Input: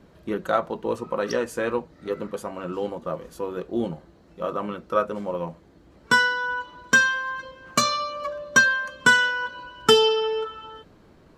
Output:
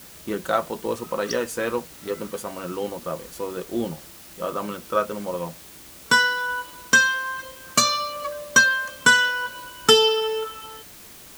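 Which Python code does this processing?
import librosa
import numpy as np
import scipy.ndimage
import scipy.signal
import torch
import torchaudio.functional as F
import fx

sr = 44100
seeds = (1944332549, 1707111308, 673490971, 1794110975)

p1 = fx.high_shelf(x, sr, hz=3500.0, db=8.0)
p2 = fx.quant_dither(p1, sr, seeds[0], bits=6, dither='triangular')
p3 = p1 + (p2 * librosa.db_to_amplitude(-4.5))
y = p3 * librosa.db_to_amplitude(-4.5)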